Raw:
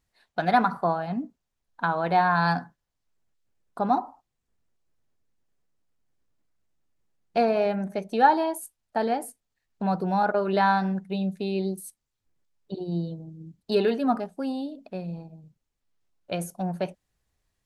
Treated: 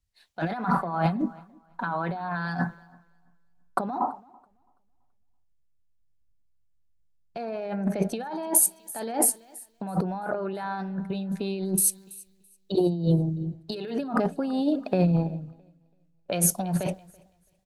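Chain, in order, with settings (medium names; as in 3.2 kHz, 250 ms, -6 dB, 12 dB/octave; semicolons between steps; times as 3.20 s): 0.77–3.88 s: comb 5.3 ms, depth 56%; peak limiter -18 dBFS, peak gain reduction 11.5 dB; compressor with a negative ratio -35 dBFS, ratio -1; feedback delay 332 ms, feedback 51%, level -19.5 dB; three bands expanded up and down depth 70%; trim +7 dB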